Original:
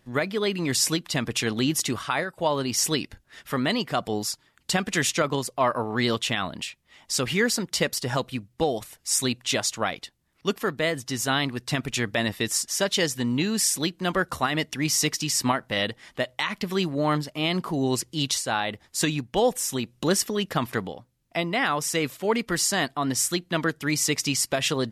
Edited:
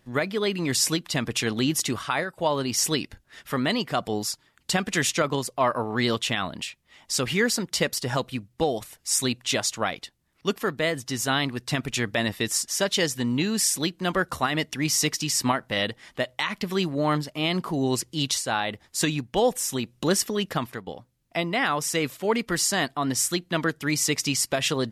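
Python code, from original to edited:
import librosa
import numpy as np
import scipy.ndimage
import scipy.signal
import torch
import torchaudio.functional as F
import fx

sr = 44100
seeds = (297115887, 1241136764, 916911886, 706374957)

y = fx.edit(x, sr, fx.fade_out_to(start_s=20.5, length_s=0.37, floor_db=-15.5), tone=tone)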